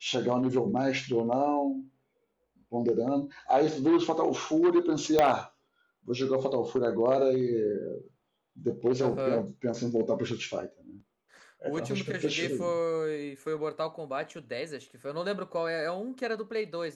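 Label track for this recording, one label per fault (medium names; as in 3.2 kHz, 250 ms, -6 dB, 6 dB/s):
5.190000	5.190000	pop -10 dBFS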